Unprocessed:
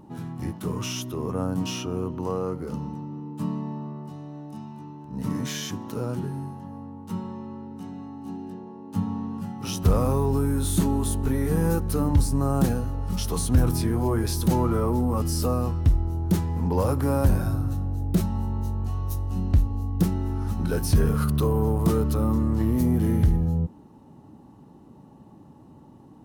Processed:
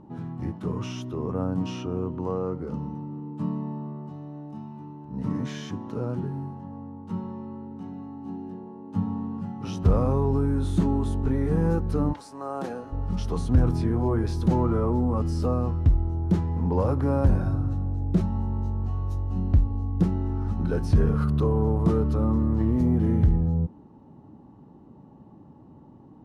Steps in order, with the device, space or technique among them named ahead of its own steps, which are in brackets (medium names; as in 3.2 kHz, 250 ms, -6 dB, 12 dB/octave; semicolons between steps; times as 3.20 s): through cloth (low-pass 6.7 kHz 12 dB/octave; treble shelf 2.4 kHz -12.5 dB); 12.12–12.91 s: high-pass 870 Hz -> 320 Hz 12 dB/octave